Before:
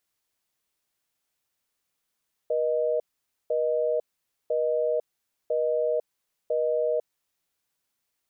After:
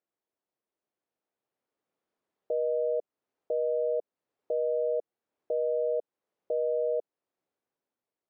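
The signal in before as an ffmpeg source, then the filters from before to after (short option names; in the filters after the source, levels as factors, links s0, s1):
-f lavfi -i "aevalsrc='0.0562*(sin(2*PI*480*t)+sin(2*PI*620*t))*clip(min(mod(t,1),0.5-mod(t,1))/0.005,0,1)':d=4.85:s=44100"
-af "dynaudnorm=f=650:g=5:m=2.37,alimiter=limit=0.0891:level=0:latency=1:release=426,bandpass=f=420:t=q:w=0.98:csg=0"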